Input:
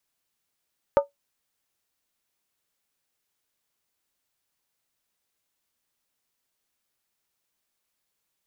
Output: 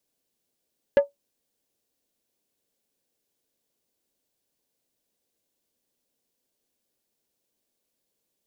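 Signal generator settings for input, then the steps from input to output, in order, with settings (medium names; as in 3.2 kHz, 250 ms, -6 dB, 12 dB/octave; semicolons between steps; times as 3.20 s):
skin hit, lowest mode 566 Hz, decay 0.14 s, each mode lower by 7 dB, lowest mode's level -10.5 dB
graphic EQ 250/500/1000/2000 Hz +7/+8/-5/-5 dB; saturation -12.5 dBFS; band-stop 1.3 kHz, Q 9.8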